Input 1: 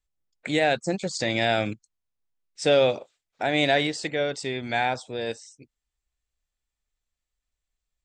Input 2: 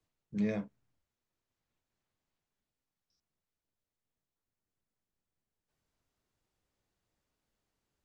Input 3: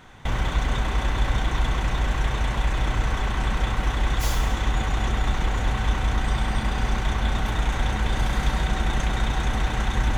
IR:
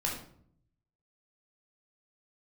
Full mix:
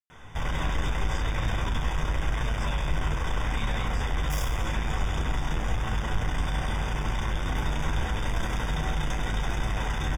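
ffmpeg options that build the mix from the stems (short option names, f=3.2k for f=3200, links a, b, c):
-filter_complex "[0:a]highpass=1.2k,volume=-15dB[a];[2:a]asoftclip=type=hard:threshold=-25dB,flanger=delay=8.7:depth=4.6:regen=62:speed=0.85:shape=sinusoidal,adelay=100,volume=-1dB,asplit=2[b][c];[c]volume=-5.5dB[d];[3:a]atrim=start_sample=2205[e];[d][e]afir=irnorm=-1:irlink=0[f];[a][b][f]amix=inputs=3:normalize=0,asuperstop=centerf=4200:order=20:qfactor=4.7"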